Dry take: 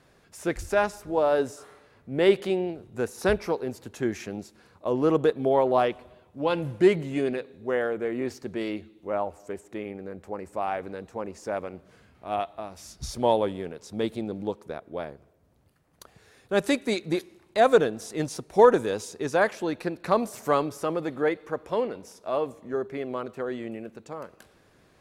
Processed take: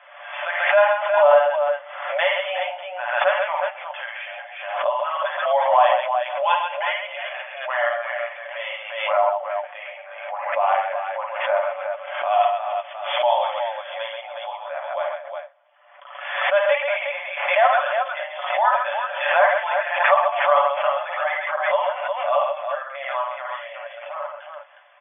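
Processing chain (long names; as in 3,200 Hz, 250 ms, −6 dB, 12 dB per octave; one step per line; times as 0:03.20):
comb filter 6.9 ms, depth 65%
in parallel at +2.5 dB: brickwall limiter −15.5 dBFS, peak gain reduction 10.5 dB
on the sum: flanger 1 Hz, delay 6.7 ms, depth 7.3 ms, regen −40%
linear-phase brick-wall band-pass 540–3,500 Hz
multi-tap delay 52/53/70/134/362 ms −4/−7.5/−12/−5/−6 dB
background raised ahead of every attack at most 56 dB per second
level +2.5 dB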